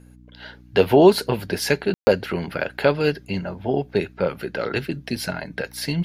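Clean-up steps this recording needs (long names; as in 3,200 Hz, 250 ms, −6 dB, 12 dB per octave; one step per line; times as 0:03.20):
hum removal 61 Hz, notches 5
ambience match 0:01.94–0:02.07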